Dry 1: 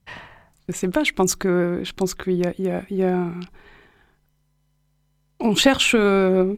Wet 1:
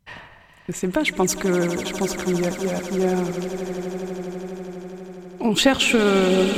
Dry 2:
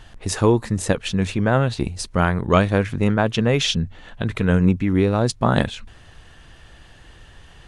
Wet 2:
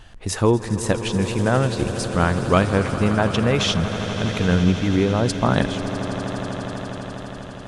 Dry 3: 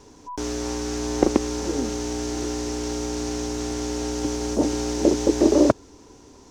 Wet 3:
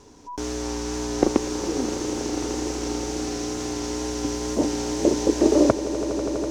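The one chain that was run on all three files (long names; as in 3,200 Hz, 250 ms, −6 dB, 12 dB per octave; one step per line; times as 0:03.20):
echo that builds up and dies away 82 ms, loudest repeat 8, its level −16 dB
tape wow and flutter 23 cents
level −1 dB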